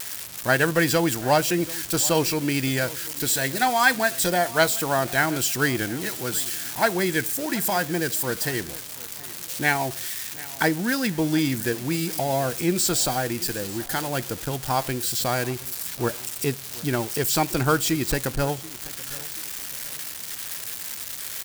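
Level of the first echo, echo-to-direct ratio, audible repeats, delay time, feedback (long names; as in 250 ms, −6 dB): −20.0 dB, −19.5 dB, 2, 731 ms, 34%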